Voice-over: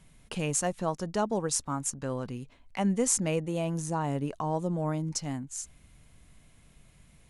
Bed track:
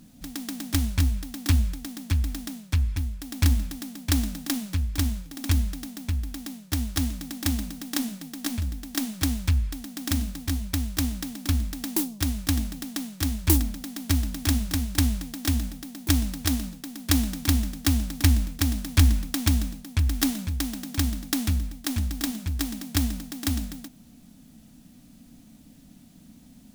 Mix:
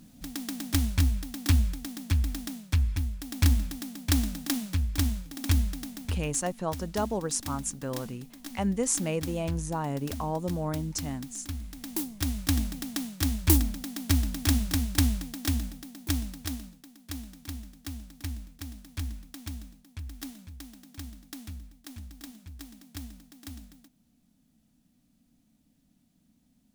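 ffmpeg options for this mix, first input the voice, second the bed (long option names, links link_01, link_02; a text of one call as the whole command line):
ffmpeg -i stem1.wav -i stem2.wav -filter_complex "[0:a]adelay=5800,volume=-1dB[link_01];[1:a]volume=9.5dB,afade=type=out:start_time=5.86:duration=0.66:silence=0.298538,afade=type=in:start_time=11.61:duration=1:silence=0.281838,afade=type=out:start_time=14.89:duration=2.11:silence=0.16788[link_02];[link_01][link_02]amix=inputs=2:normalize=0" out.wav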